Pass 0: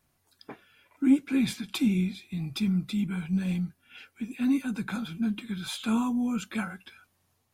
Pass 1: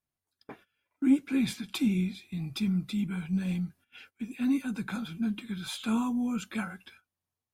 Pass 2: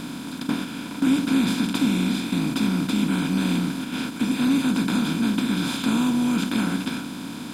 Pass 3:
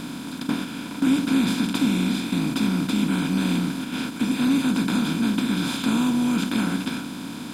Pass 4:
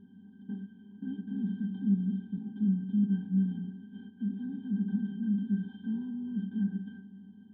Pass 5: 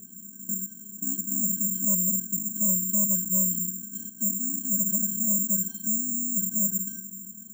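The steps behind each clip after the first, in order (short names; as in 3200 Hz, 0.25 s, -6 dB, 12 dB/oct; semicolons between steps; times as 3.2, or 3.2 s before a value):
gate -52 dBFS, range -17 dB; gain -2 dB
per-bin compression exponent 0.2
nothing audible
octave resonator G, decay 0.12 s; spectral expander 1.5:1
soft clip -29 dBFS, distortion -10 dB; careless resampling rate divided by 6×, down none, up zero stuff; gain +1 dB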